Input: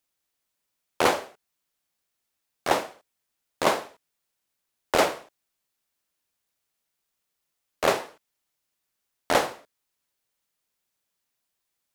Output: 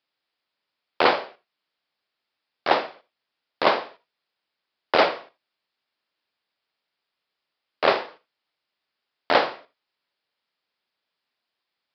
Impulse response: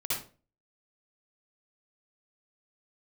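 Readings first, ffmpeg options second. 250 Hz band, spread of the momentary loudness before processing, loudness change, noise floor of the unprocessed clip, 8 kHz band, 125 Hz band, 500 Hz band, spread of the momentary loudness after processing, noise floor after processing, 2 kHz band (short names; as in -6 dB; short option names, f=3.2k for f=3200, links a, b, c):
+0.5 dB, 11 LU, +3.0 dB, -81 dBFS, under -20 dB, -4.0 dB, +2.5 dB, 17 LU, -84 dBFS, +4.0 dB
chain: -filter_complex "[0:a]asplit=2[a][b];[1:a]atrim=start_sample=2205,atrim=end_sample=4410[c];[b][c]afir=irnorm=-1:irlink=0,volume=-20.5dB[d];[a][d]amix=inputs=2:normalize=0,aresample=11025,aresample=44100,highpass=f=330:p=1,volume=3.5dB"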